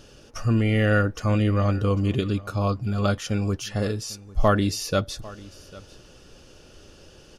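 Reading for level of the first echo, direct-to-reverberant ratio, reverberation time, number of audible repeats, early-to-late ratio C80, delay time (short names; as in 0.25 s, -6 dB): -20.5 dB, none, none, 1, none, 0.798 s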